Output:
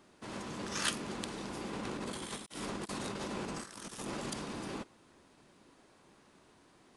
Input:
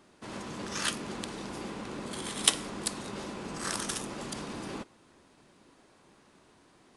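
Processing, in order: 1.73–4.3 negative-ratio compressor -40 dBFS, ratio -0.5; gain -2 dB

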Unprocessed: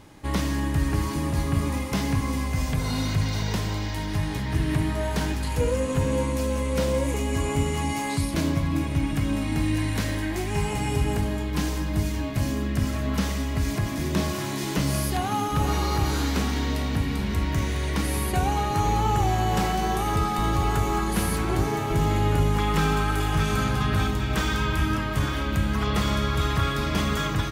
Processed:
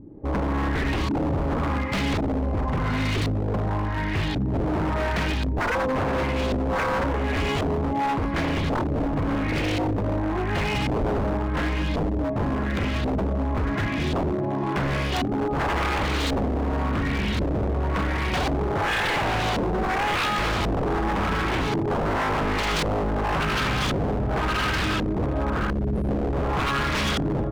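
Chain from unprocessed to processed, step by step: LFO low-pass saw up 0.92 Hz 280–3900 Hz; 25.7–26.33 brick-wall FIR band-stop 430–8700 Hz; wavefolder -22 dBFS; gain +3 dB

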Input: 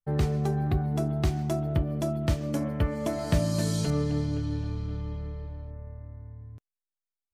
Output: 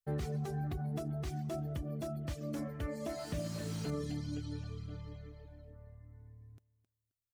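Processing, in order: low shelf 130 Hz -4.5 dB; limiter -22 dBFS, peak gain reduction 8.5 dB; high shelf 4600 Hz +9 dB; notch 940 Hz, Q 5.5; feedback echo 0.265 s, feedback 22%, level -13 dB; reverb removal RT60 1 s; slew limiter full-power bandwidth 33 Hz; gain -5.5 dB

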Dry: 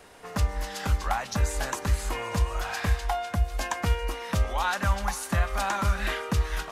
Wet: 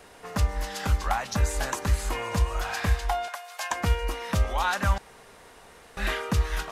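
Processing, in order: 3.28–3.71 HPF 720 Hz 24 dB/oct; 4.98–5.97 room tone; gain +1 dB

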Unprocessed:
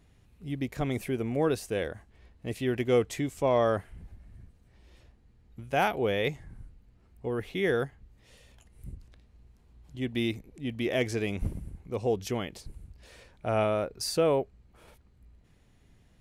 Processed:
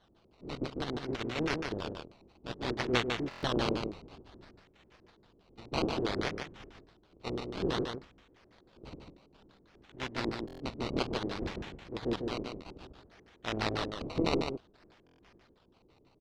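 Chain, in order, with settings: spectral contrast lowered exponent 0.35; decimation with a swept rate 18×, swing 100% 0.58 Hz; LFO low-pass square 6.1 Hz 360–4100 Hz; on a send: echo 0.148 s -5 dB; on the sum: stuck buffer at 3.29/10.46/15.05, samples 1024, times 5; gain -7 dB

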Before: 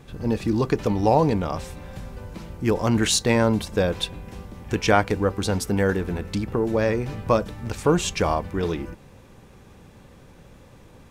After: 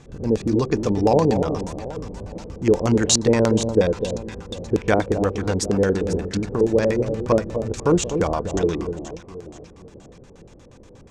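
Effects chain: echo with dull and thin repeats by turns 0.247 s, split 960 Hz, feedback 62%, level -8 dB; LFO low-pass square 8.4 Hz 450–6900 Hz

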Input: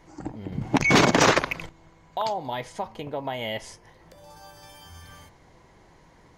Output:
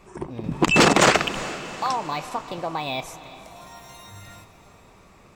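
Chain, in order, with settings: diffused feedback echo 0.458 s, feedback 54%, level -15 dB; wide varispeed 1.19×; gain +2.5 dB

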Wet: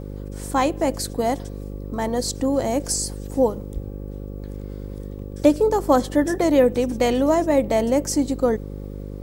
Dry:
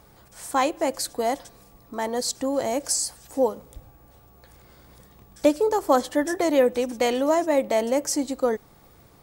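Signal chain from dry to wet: low shelf 270 Hz +11.5 dB; buzz 50 Hz, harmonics 11, -33 dBFS -4 dB/oct

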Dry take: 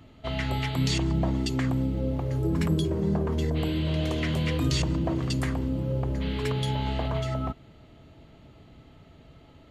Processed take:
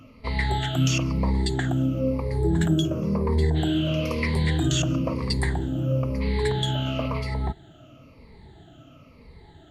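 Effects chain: moving spectral ripple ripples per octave 0.9, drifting -1 Hz, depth 17 dB

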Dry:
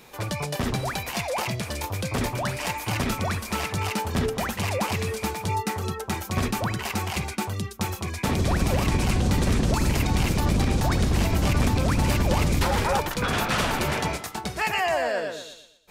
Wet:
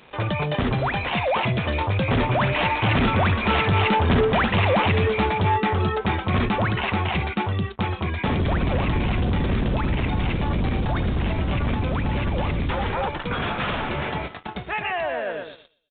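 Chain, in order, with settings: Doppler pass-by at 3.97, 6 m/s, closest 7.9 m; in parallel at +1 dB: compressor, threshold -41 dBFS, peak gain reduction 19 dB; on the sum: sample leveller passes 3; downsampling 8000 Hz

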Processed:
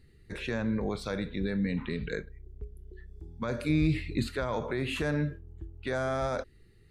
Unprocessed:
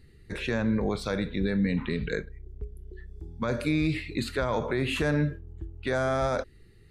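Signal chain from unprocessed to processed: 3.69–4.28 low shelf 250 Hz +8.5 dB; gain -4 dB

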